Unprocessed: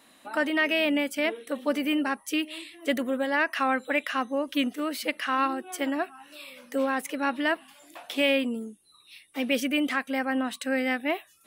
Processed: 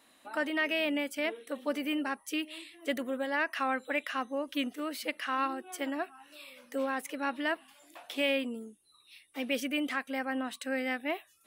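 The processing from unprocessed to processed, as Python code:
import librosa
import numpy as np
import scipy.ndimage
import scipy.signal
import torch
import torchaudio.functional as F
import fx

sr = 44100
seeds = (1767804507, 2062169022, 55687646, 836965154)

y = fx.peak_eq(x, sr, hz=180.0, db=-4.5, octaves=0.78)
y = F.gain(torch.from_numpy(y), -5.5).numpy()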